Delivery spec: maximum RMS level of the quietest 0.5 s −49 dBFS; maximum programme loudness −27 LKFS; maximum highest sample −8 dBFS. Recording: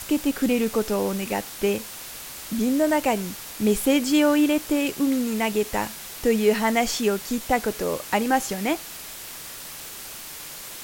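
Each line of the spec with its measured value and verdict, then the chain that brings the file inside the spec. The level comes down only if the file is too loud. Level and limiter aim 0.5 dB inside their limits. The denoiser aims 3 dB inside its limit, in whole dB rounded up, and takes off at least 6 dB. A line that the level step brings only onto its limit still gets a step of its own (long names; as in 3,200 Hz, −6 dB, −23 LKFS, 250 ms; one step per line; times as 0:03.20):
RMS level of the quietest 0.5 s −38 dBFS: out of spec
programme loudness −23.5 LKFS: out of spec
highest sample −7.5 dBFS: out of spec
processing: broadband denoise 10 dB, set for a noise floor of −38 dBFS
level −4 dB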